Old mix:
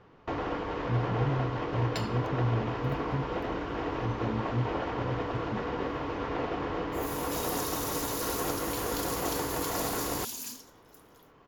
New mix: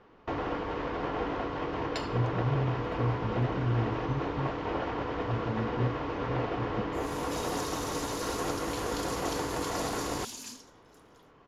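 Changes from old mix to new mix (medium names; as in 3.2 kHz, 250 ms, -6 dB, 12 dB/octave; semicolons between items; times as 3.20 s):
speech: entry +1.25 s; master: add Bessel low-pass 7.7 kHz, order 4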